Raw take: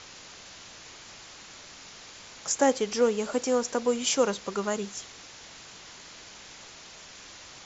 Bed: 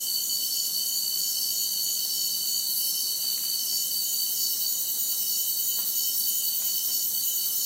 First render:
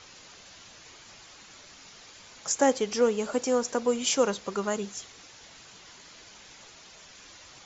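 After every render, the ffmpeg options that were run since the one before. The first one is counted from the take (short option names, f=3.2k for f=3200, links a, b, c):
-af "afftdn=nr=6:nf=-48"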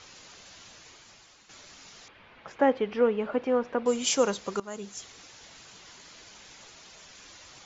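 -filter_complex "[0:a]asettb=1/sr,asplit=3[a][b][c];[a]atrim=end=2.084[d];[b]atrim=start=2.08:end=3.86,asetpts=PTS-STARTPTS,afade=t=in:d=0.004:c=qsin,afade=t=out:st=1.776:d=0.004:c=qsin,lowpass=f=2.8k:w=0.5412,lowpass=f=2.8k:w=1.3066[e];[c]atrim=start=3.856[f];[d][e]acrossfade=d=0.004:c1=hsin:c2=qsin[g];[g][f]acrossfade=d=0.004:c1=qsin:c2=hsin,asplit=3[h][i][j];[h]atrim=end=1.49,asetpts=PTS-STARTPTS,afade=t=out:st=0.7:d=0.79:silence=0.354813[k];[i]atrim=start=1.49:end=4.6,asetpts=PTS-STARTPTS,afade=t=in:d=0.004:c=hsin:silence=0.354813,afade=t=out:st=3.106:d=0.004:c=hsin:silence=0.133352[l];[j]atrim=start=4.6,asetpts=PTS-STARTPTS,afade=t=in:d=0.49:silence=0.133352[m];[k][l][m]concat=n=3:v=0:a=1"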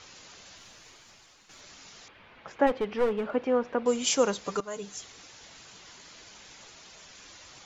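-filter_complex "[0:a]asettb=1/sr,asplit=3[a][b][c];[a]atrim=end=0.574[d];[b]atrim=start=0.57:end=1.61,asetpts=PTS-STARTPTS,afade=t=in:d=0.004:c=qsin,afade=t=out:st=1.036:d=0.004:c=qsin,aeval=exprs='if(lt(val(0),0),0.708*val(0),val(0))':c=same[e];[c]atrim=start=1.606[f];[d][e]acrossfade=d=0.004:c1=hsin:c2=qsin[g];[g][f]acrossfade=d=0.004:c1=qsin:c2=hsin,asplit=3[h][i][j];[h]afade=t=out:st=2.66:d=0.02[k];[i]aeval=exprs='clip(val(0),-1,0.0501)':c=same,afade=t=in:st=2.66:d=0.02,afade=t=out:st=3.3:d=0.02[l];[j]afade=t=in:st=3.3:d=0.02[m];[k][l][m]amix=inputs=3:normalize=0,asettb=1/sr,asplit=3[n][o][p];[n]atrim=end=4.444[q];[o]atrim=start=4.44:end=4.97,asetpts=PTS-STARTPTS,afade=t=in:d=0.004:c=qsin,afade=t=out:st=0.526:d=0.004:c=qsin,aecho=1:1:6.7:0.65,atrim=end_sample=23373[r];[p]atrim=start=4.966[s];[q][r]acrossfade=d=0.004:c1=hsin:c2=qsin[t];[t][s]acrossfade=d=0.004:c1=qsin:c2=hsin"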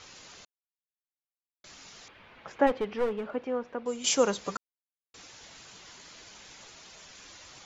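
-filter_complex "[0:a]asplit=6[a][b][c][d][e][f];[a]atrim=end=0.45,asetpts=PTS-STARTPTS,afade=t=out:st=0.446:d=0.004:c=hsin[g];[b]atrim=start=0.45:end=1.64,asetpts=PTS-STARTPTS,volume=0[h];[c]atrim=start=1.64:end=4.04,asetpts=PTS-STARTPTS,afade=t=in:d=0.004:c=hsin,afade=t=out:st=1.01:d=1.39:c=qua:silence=0.421697[i];[d]atrim=start=4.04:end=4.57,asetpts=PTS-STARTPTS,afade=t=in:d=0.004:c=hsin:silence=0.421697,afade=t=out:st=0.526:d=0.004:c=hsin[j];[e]atrim=start=4.57:end=5.14,asetpts=PTS-STARTPTS,volume=0[k];[f]atrim=start=5.14,asetpts=PTS-STARTPTS,afade=t=in:d=0.004:c=hsin[l];[g][h][i][j][k][l]concat=n=6:v=0:a=1"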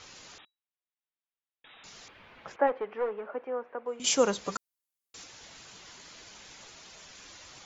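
-filter_complex "[0:a]asettb=1/sr,asplit=3[a][b][c];[a]atrim=end=0.384[d];[b]atrim=start=0.38:end=1.84,asetpts=PTS-STARTPTS,afade=t=in:d=0.004:c=qsin,afade=t=out:st=1.456:d=0.004:c=qsin,lowpass=f=3.3k:t=q:w=0.5098,lowpass=f=3.3k:t=q:w=0.6013,lowpass=f=3.3k:t=q:w=0.9,lowpass=f=3.3k:t=q:w=2.563,afreqshift=-3900[e];[c]atrim=start=1.836[f];[d][e]acrossfade=d=0.004:c1=hsin:c2=qsin[g];[g][f]acrossfade=d=0.004:c1=qsin:c2=hsin,asettb=1/sr,asplit=3[h][i][j];[h]atrim=end=2.564[k];[i]atrim=start=2.56:end=4,asetpts=PTS-STARTPTS,afade=t=in:d=0.004:c=qsin,afade=t=out:st=1.436:d=0.004:c=qsin,acrossover=split=360 2300:gain=0.126 1 0.0631[l][m][n];[l][m][n]amix=inputs=3:normalize=0[o];[j]atrim=start=3.996[p];[k][o]acrossfade=d=0.004:c1=hsin:c2=qsin[q];[q][p]acrossfade=d=0.004:c1=qsin:c2=hsin,asettb=1/sr,asplit=3[r][s][t];[r]atrim=end=4.524[u];[s]atrim=start=4.52:end=5.24,asetpts=PTS-STARTPTS,afade=t=in:d=0.004:c=qsin,afade=t=out:st=0.716:d=0.004:c=qsin,aemphasis=mode=production:type=cd[v];[t]atrim=start=5.236[w];[u][v]acrossfade=d=0.004:c1=hsin:c2=qsin[x];[x][w]acrossfade=d=0.004:c1=qsin:c2=hsin"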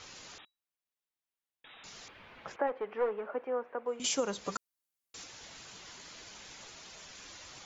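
-af "alimiter=limit=-21dB:level=0:latency=1:release=349"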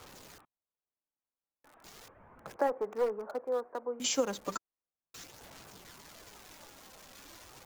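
-filter_complex "[0:a]acrossover=split=140|1400[a][b][c];[c]aeval=exprs='val(0)*gte(abs(val(0)),0.00473)':c=same[d];[a][b][d]amix=inputs=3:normalize=0,aphaser=in_gain=1:out_gain=1:delay=3.8:decay=0.28:speed=0.36:type=sinusoidal"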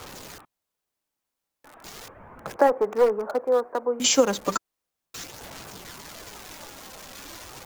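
-af "volume=11dB"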